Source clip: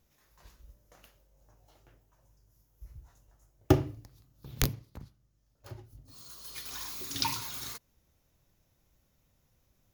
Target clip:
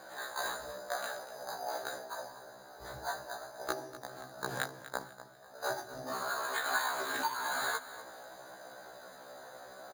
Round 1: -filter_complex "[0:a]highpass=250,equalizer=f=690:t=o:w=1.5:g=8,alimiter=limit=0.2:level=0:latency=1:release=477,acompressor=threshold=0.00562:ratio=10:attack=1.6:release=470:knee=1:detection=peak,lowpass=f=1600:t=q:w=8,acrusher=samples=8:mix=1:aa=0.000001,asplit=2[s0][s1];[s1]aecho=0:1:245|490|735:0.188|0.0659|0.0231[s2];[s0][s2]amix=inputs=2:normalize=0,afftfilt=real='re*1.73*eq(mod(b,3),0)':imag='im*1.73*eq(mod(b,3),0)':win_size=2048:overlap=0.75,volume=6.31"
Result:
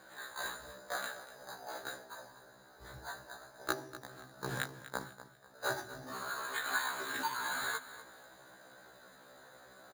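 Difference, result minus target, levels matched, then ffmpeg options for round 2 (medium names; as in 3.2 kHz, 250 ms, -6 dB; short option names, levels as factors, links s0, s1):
500 Hz band -3.0 dB
-filter_complex "[0:a]highpass=250,equalizer=f=690:t=o:w=1.5:g=19.5,alimiter=limit=0.2:level=0:latency=1:release=477,acompressor=threshold=0.00562:ratio=10:attack=1.6:release=470:knee=1:detection=peak,lowpass=f=1600:t=q:w=8,acrusher=samples=8:mix=1:aa=0.000001,asplit=2[s0][s1];[s1]aecho=0:1:245|490|735:0.188|0.0659|0.0231[s2];[s0][s2]amix=inputs=2:normalize=0,afftfilt=real='re*1.73*eq(mod(b,3),0)':imag='im*1.73*eq(mod(b,3),0)':win_size=2048:overlap=0.75,volume=6.31"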